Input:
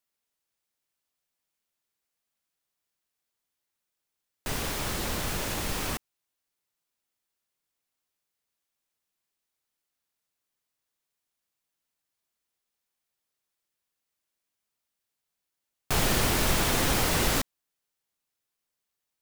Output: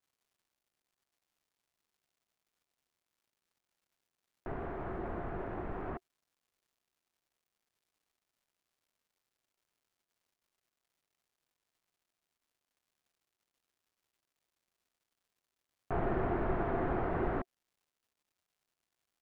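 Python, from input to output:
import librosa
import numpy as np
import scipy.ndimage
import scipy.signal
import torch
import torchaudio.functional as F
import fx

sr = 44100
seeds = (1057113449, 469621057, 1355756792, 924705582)

y = scipy.signal.sosfilt(scipy.signal.butter(4, 1600.0, 'lowpass', fs=sr, output='sos'), x)
y = fx.small_body(y, sr, hz=(370.0, 690.0), ring_ms=45, db=10)
y = fx.dmg_crackle(y, sr, seeds[0], per_s=350.0, level_db=-61.0)
y = y * librosa.db_to_amplitude(-8.0)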